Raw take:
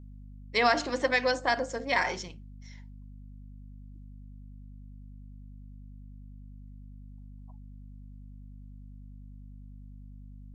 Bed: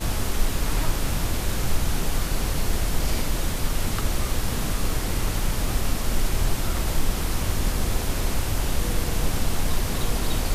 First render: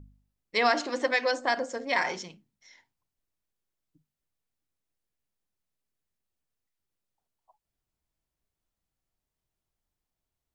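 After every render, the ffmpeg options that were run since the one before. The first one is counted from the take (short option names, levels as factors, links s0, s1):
-af "bandreject=f=50:t=h:w=4,bandreject=f=100:t=h:w=4,bandreject=f=150:t=h:w=4,bandreject=f=200:t=h:w=4,bandreject=f=250:t=h:w=4"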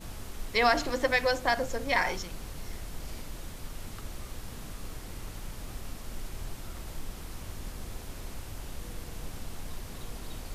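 -filter_complex "[1:a]volume=0.158[s0];[0:a][s0]amix=inputs=2:normalize=0"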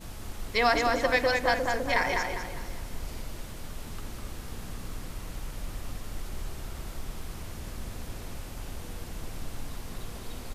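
-filter_complex "[0:a]asplit=2[s0][s1];[s1]adelay=201,lowpass=f=3400:p=1,volume=0.708,asplit=2[s2][s3];[s3]adelay=201,lowpass=f=3400:p=1,volume=0.43,asplit=2[s4][s5];[s5]adelay=201,lowpass=f=3400:p=1,volume=0.43,asplit=2[s6][s7];[s7]adelay=201,lowpass=f=3400:p=1,volume=0.43,asplit=2[s8][s9];[s9]adelay=201,lowpass=f=3400:p=1,volume=0.43,asplit=2[s10][s11];[s11]adelay=201,lowpass=f=3400:p=1,volume=0.43[s12];[s0][s2][s4][s6][s8][s10][s12]amix=inputs=7:normalize=0"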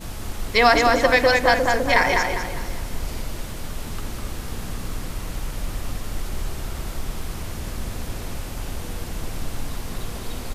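-af "volume=2.66,alimiter=limit=0.708:level=0:latency=1"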